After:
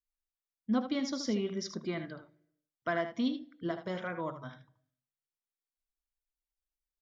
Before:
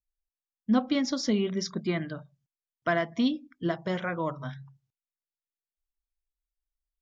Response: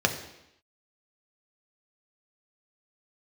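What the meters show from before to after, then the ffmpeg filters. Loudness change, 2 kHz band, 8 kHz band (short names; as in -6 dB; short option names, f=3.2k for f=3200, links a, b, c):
-6.0 dB, -6.0 dB, n/a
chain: -filter_complex "[0:a]aecho=1:1:77:0.335,asplit=2[a][b];[1:a]atrim=start_sample=2205[c];[b][c]afir=irnorm=-1:irlink=0,volume=-27.5dB[d];[a][d]amix=inputs=2:normalize=0,volume=-7dB"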